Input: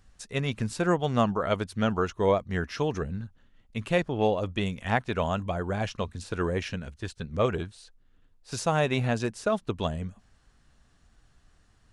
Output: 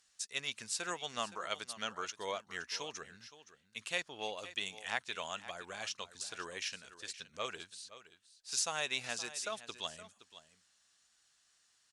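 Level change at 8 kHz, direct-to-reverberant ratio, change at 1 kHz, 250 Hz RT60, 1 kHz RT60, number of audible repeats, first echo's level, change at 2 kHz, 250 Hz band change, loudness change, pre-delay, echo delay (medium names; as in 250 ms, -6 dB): +3.5 dB, no reverb, -12.0 dB, no reverb, no reverb, 1, -15.0 dB, -6.0 dB, -24.0 dB, -10.5 dB, no reverb, 519 ms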